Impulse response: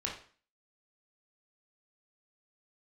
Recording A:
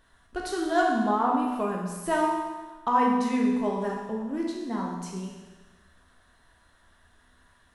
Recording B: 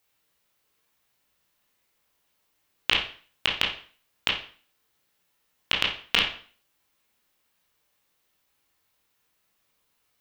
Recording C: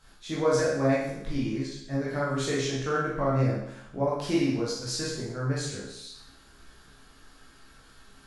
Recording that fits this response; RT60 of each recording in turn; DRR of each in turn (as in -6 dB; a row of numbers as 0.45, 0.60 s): B; 1.3, 0.45, 0.75 s; -2.0, -2.5, -7.5 dB